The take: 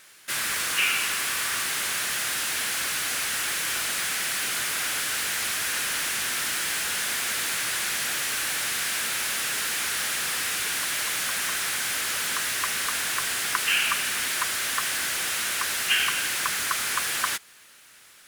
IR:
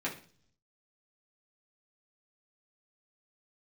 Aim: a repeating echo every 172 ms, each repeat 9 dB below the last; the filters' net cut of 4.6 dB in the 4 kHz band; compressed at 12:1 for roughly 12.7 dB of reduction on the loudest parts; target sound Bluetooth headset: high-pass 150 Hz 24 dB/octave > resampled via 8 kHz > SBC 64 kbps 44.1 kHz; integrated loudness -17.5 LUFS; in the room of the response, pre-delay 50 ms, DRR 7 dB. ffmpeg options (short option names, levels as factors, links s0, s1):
-filter_complex "[0:a]equalizer=f=4000:t=o:g=-6.5,acompressor=threshold=0.0178:ratio=12,aecho=1:1:172|344|516|688:0.355|0.124|0.0435|0.0152,asplit=2[s0][s1];[1:a]atrim=start_sample=2205,adelay=50[s2];[s1][s2]afir=irnorm=-1:irlink=0,volume=0.251[s3];[s0][s3]amix=inputs=2:normalize=0,highpass=f=150:w=0.5412,highpass=f=150:w=1.3066,aresample=8000,aresample=44100,volume=10" -ar 44100 -c:a sbc -b:a 64k